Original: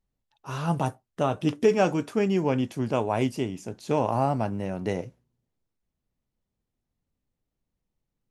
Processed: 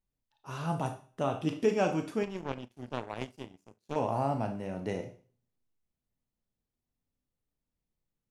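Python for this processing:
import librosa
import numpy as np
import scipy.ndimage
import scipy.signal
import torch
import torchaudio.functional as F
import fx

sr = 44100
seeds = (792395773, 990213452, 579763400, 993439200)

y = fx.rev_schroeder(x, sr, rt60_s=0.41, comb_ms=25, drr_db=6.0)
y = fx.power_curve(y, sr, exponent=2.0, at=(2.23, 3.96))
y = y * librosa.db_to_amplitude(-6.5)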